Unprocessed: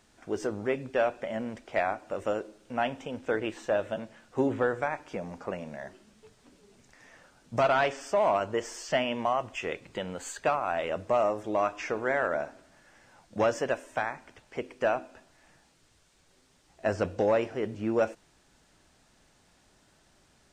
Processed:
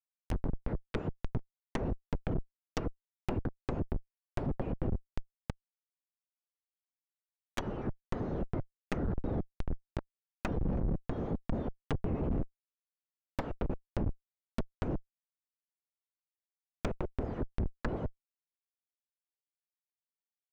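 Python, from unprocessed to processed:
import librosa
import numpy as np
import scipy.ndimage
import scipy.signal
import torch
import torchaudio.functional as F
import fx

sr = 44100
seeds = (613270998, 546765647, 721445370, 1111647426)

y = fx.octave_mirror(x, sr, pivot_hz=1900.0)
y = fx.high_shelf(y, sr, hz=2400.0, db=5.0)
y = fx.formant_shift(y, sr, semitones=2)
y = fx.schmitt(y, sr, flips_db=-26.5)
y = fx.env_lowpass_down(y, sr, base_hz=450.0, full_db=-34.0)
y = y * librosa.db_to_amplitude(6.0)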